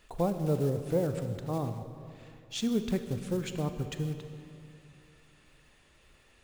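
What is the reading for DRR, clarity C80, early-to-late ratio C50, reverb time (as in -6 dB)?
8.0 dB, 9.5 dB, 8.5 dB, 2.7 s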